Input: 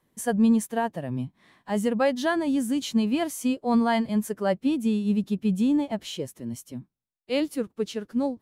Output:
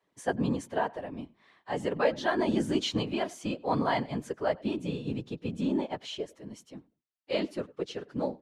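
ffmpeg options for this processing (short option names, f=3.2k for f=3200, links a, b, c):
-filter_complex "[0:a]asettb=1/sr,asplit=3[a][b][c];[a]atrim=end=2.394[d];[b]atrim=start=2.39:end=3.03,asetpts=PTS-STARTPTS,afade=t=in:d=0.004:c=qsin,afade=t=out:st=0.636:d=0.004:c=qsin,acontrast=27[e];[c]atrim=start=3.026[f];[d][e]acrossfade=d=0.004:c1=hsin:c2=qsin[g];[g][f]acrossfade=d=0.004:c1=qsin:c2=hsin,highpass=330,lowpass=5.2k,asplit=2[h][i];[i]adelay=98,lowpass=f=2.8k:p=1,volume=-23dB,asplit=2[j][k];[k]adelay=98,lowpass=f=2.8k:p=1,volume=0.2[l];[j][l]amix=inputs=2:normalize=0[m];[h][m]amix=inputs=2:normalize=0,afftfilt=real='hypot(re,im)*cos(2*PI*random(0))':imag='hypot(re,im)*sin(2*PI*random(1))':win_size=512:overlap=0.75,volume=3.5dB"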